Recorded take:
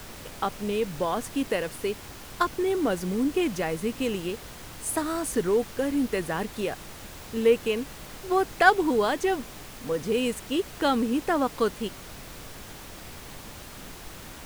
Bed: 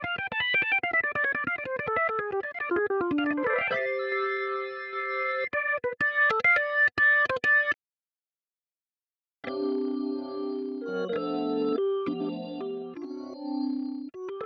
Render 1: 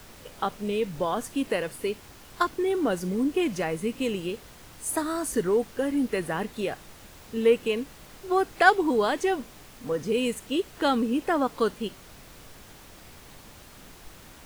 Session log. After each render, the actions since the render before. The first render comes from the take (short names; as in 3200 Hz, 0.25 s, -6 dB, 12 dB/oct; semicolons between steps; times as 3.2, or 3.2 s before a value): noise print and reduce 6 dB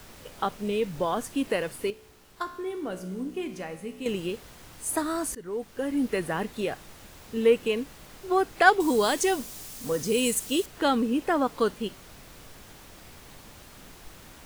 1.9–4.06 resonator 62 Hz, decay 1 s, mix 70%; 5.35–6.06 fade in, from -20 dB; 8.8–10.66 tone controls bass +1 dB, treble +13 dB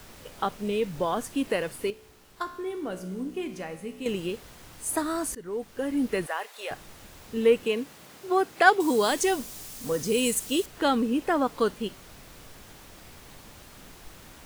6.26–6.71 HPF 580 Hz 24 dB/oct; 7.64–9.11 HPF 130 Hz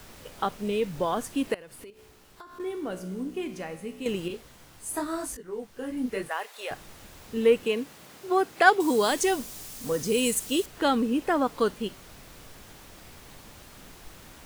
1.54–2.6 compressor 10:1, threshold -42 dBFS; 4.28–6.31 detuned doubles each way 31 cents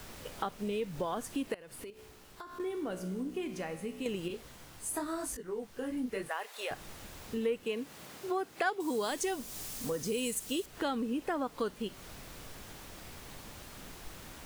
compressor 2.5:1, threshold -35 dBFS, peak gain reduction 15.5 dB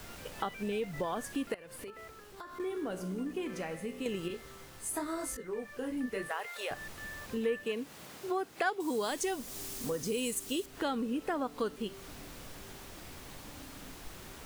add bed -24.5 dB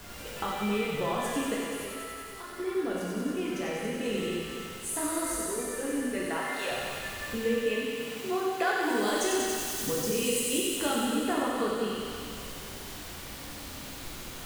thin delay 94 ms, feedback 81%, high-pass 1900 Hz, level -4.5 dB; plate-style reverb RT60 2 s, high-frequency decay 0.95×, DRR -4 dB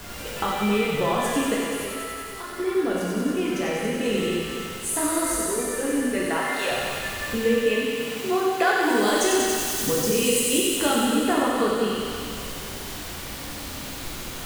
gain +7 dB